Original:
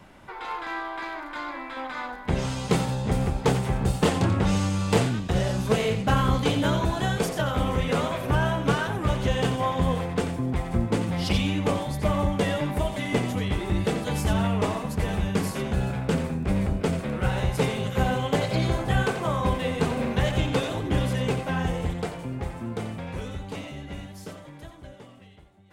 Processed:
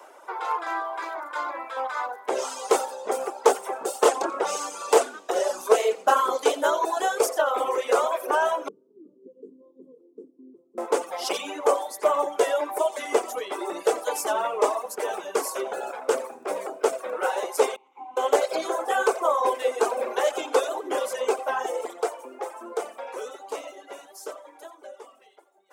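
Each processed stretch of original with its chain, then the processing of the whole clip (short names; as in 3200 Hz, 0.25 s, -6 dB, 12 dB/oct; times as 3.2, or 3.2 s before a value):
8.68–10.78 inverse Chebyshev low-pass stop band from 690 Hz, stop band 50 dB + bands offset in time highs, lows 50 ms, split 160 Hz
17.76–18.17 vowel filter u + bell 380 Hz -7 dB 1.1 oct
whole clip: steep high-pass 390 Hz 36 dB/oct; reverb removal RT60 1.2 s; band shelf 2800 Hz -9 dB; gain +7.5 dB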